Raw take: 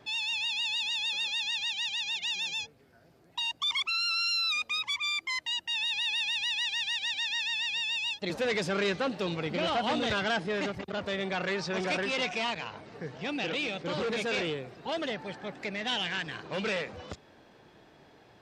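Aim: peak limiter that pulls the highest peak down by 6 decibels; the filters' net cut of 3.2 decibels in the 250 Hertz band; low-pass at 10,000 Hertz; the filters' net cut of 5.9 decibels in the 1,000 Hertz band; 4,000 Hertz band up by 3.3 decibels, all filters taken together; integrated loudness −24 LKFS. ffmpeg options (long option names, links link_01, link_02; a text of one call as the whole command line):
ffmpeg -i in.wav -af "lowpass=10000,equalizer=frequency=250:width_type=o:gain=-4,equalizer=frequency=1000:width_type=o:gain=-8.5,equalizer=frequency=4000:width_type=o:gain=4.5,volume=5.5dB,alimiter=limit=-17.5dB:level=0:latency=1" out.wav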